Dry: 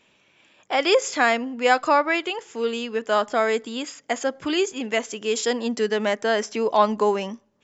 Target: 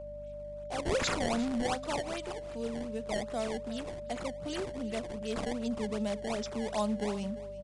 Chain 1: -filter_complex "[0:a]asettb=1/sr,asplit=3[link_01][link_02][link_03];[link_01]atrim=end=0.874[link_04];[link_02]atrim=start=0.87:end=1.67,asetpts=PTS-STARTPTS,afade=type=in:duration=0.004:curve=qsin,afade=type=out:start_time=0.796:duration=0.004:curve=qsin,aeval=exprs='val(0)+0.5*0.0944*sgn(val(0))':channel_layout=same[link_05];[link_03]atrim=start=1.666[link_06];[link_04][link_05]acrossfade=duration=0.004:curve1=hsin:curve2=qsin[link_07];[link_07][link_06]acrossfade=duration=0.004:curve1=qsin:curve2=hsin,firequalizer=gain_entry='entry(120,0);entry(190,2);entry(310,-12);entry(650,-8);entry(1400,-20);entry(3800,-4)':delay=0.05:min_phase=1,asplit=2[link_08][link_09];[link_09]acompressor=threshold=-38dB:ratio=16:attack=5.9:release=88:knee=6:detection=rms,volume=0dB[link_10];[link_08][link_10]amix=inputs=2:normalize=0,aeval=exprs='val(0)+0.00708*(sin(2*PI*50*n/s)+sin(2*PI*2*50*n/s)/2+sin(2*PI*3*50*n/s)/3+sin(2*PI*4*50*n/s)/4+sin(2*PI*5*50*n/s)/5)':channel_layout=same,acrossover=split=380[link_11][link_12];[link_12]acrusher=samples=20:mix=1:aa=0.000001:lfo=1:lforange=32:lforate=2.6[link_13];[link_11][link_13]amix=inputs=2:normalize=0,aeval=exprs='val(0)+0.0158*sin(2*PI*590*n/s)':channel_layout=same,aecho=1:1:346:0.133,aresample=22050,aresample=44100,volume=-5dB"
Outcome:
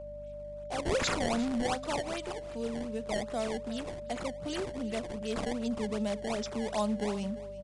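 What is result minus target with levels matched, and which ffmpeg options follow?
downward compressor: peak gain reduction −6 dB
-filter_complex "[0:a]asettb=1/sr,asplit=3[link_01][link_02][link_03];[link_01]atrim=end=0.874[link_04];[link_02]atrim=start=0.87:end=1.67,asetpts=PTS-STARTPTS,afade=type=in:duration=0.004:curve=qsin,afade=type=out:start_time=0.796:duration=0.004:curve=qsin,aeval=exprs='val(0)+0.5*0.0944*sgn(val(0))':channel_layout=same[link_05];[link_03]atrim=start=1.666[link_06];[link_04][link_05]acrossfade=duration=0.004:curve1=hsin:curve2=qsin[link_07];[link_07][link_06]acrossfade=duration=0.004:curve1=qsin:curve2=hsin,firequalizer=gain_entry='entry(120,0);entry(190,2);entry(310,-12);entry(650,-8);entry(1400,-20);entry(3800,-4)':delay=0.05:min_phase=1,asplit=2[link_08][link_09];[link_09]acompressor=threshold=-44.5dB:ratio=16:attack=5.9:release=88:knee=6:detection=rms,volume=0dB[link_10];[link_08][link_10]amix=inputs=2:normalize=0,aeval=exprs='val(0)+0.00708*(sin(2*PI*50*n/s)+sin(2*PI*2*50*n/s)/2+sin(2*PI*3*50*n/s)/3+sin(2*PI*4*50*n/s)/4+sin(2*PI*5*50*n/s)/5)':channel_layout=same,acrossover=split=380[link_11][link_12];[link_12]acrusher=samples=20:mix=1:aa=0.000001:lfo=1:lforange=32:lforate=2.6[link_13];[link_11][link_13]amix=inputs=2:normalize=0,aeval=exprs='val(0)+0.0158*sin(2*PI*590*n/s)':channel_layout=same,aecho=1:1:346:0.133,aresample=22050,aresample=44100,volume=-5dB"

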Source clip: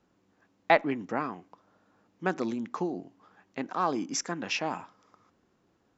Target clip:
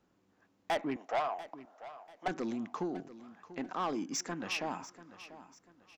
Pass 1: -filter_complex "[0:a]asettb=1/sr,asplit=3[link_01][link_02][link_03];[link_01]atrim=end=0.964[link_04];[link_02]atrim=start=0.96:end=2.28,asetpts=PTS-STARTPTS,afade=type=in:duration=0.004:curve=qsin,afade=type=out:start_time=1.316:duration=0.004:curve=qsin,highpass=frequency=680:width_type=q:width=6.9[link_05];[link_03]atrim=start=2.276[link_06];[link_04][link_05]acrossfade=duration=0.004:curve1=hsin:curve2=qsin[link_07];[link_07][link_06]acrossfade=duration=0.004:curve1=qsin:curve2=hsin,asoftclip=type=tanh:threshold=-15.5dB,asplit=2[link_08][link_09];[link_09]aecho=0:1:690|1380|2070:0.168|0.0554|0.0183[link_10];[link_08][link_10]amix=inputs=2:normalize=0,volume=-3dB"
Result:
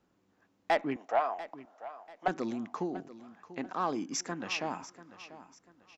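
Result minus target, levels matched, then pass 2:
soft clipping: distortion −7 dB
-filter_complex "[0:a]asettb=1/sr,asplit=3[link_01][link_02][link_03];[link_01]atrim=end=0.964[link_04];[link_02]atrim=start=0.96:end=2.28,asetpts=PTS-STARTPTS,afade=type=in:duration=0.004:curve=qsin,afade=type=out:start_time=1.316:duration=0.004:curve=qsin,highpass=frequency=680:width_type=q:width=6.9[link_05];[link_03]atrim=start=2.276[link_06];[link_04][link_05]acrossfade=duration=0.004:curve1=hsin:curve2=qsin[link_07];[link_07][link_06]acrossfade=duration=0.004:curve1=qsin:curve2=hsin,asoftclip=type=tanh:threshold=-24dB,asplit=2[link_08][link_09];[link_09]aecho=0:1:690|1380|2070:0.168|0.0554|0.0183[link_10];[link_08][link_10]amix=inputs=2:normalize=0,volume=-3dB"

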